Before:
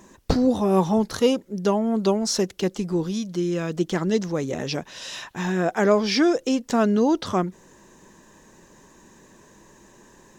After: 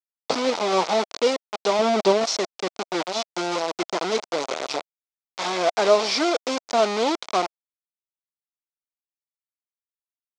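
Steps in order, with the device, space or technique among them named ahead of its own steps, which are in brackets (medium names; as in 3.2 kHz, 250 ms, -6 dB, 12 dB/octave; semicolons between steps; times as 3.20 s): hand-held game console (bit crusher 4-bit; cabinet simulation 490–5900 Hz, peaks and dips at 660 Hz +4 dB, 1.7 kHz -9 dB, 2.8 kHz -4 dB); 1.79–2.24 s: bass shelf 410 Hz +10 dB; trim +2 dB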